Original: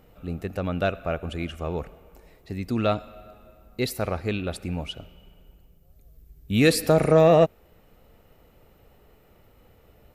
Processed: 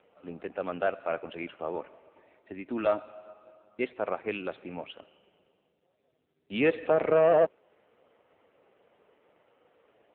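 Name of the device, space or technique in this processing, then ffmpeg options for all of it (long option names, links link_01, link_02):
telephone: -filter_complex "[0:a]asettb=1/sr,asplit=3[link_01][link_02][link_03];[link_01]atrim=end=1.744[link_04];[link_02]atrim=start=1.74:end=3.86,asetpts=PTS-STARTPTS,afade=type=in:duration=0.004:curve=qsin,afade=type=out:start_time=2.116:duration=0.004:curve=qsin,aecho=1:1:3.3:0.4,atrim=end_sample=93492[link_05];[link_03]atrim=start=3.856[link_06];[link_04][link_05]acrossfade=duration=0.004:curve1=hsin:curve2=qsin[link_07];[link_07][link_06]acrossfade=duration=0.004:curve1=qsin:curve2=hsin,highpass=frequency=86:width=0.5412,highpass=frequency=86:width=1.3066,highpass=370,lowpass=3100,asoftclip=type=tanh:threshold=-14.5dB" -ar 8000 -c:a libopencore_amrnb -b:a 5900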